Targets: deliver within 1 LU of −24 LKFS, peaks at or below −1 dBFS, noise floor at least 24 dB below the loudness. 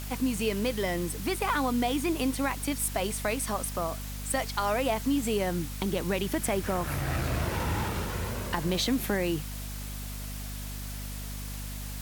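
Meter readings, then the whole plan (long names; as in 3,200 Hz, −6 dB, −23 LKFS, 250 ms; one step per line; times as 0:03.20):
mains hum 50 Hz; hum harmonics up to 250 Hz; level of the hum −36 dBFS; background noise floor −37 dBFS; target noise floor −55 dBFS; integrated loudness −30.5 LKFS; sample peak −12.0 dBFS; target loudness −24.0 LKFS
→ hum removal 50 Hz, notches 5
broadband denoise 18 dB, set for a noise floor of −37 dBFS
level +6.5 dB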